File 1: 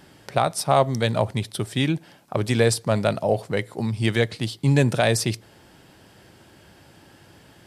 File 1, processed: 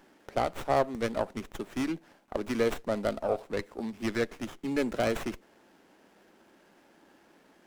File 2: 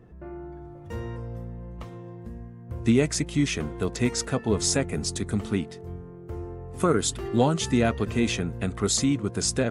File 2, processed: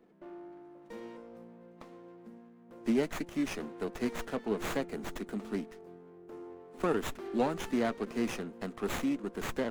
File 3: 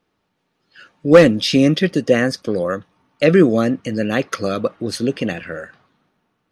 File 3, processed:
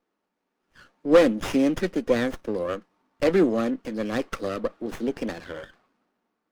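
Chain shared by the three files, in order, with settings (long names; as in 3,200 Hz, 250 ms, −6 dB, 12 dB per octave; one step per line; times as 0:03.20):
Butterworth high-pass 200 Hz 36 dB per octave
windowed peak hold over 9 samples
level −7 dB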